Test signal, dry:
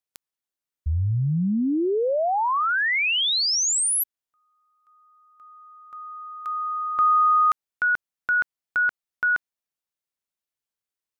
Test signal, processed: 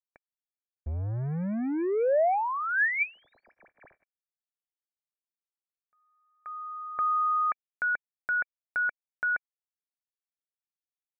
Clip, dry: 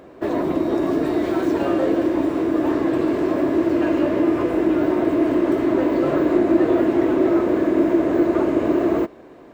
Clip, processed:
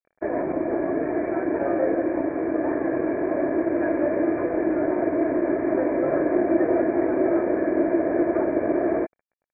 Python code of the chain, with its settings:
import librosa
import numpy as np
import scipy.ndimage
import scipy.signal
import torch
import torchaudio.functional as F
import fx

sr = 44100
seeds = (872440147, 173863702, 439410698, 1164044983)

y = np.sign(x) * np.maximum(np.abs(x) - 10.0 ** (-36.0 / 20.0), 0.0)
y = scipy.signal.sosfilt(scipy.signal.cheby1(6, 9, 2400.0, 'lowpass', fs=sr, output='sos'), y)
y = y * 10.0 ** (2.0 / 20.0)